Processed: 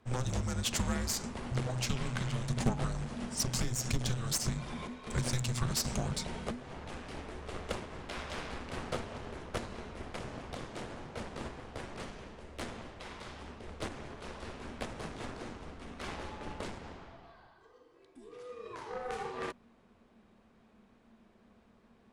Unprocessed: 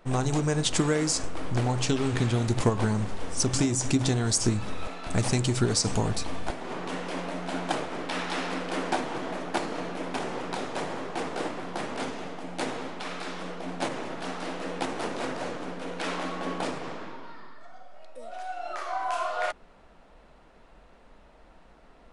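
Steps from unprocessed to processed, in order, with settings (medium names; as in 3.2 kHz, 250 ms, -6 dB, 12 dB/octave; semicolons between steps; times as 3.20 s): Chebyshev shaper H 4 -12 dB, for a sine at -12.5 dBFS; frequency shift -250 Hz; trim -8.5 dB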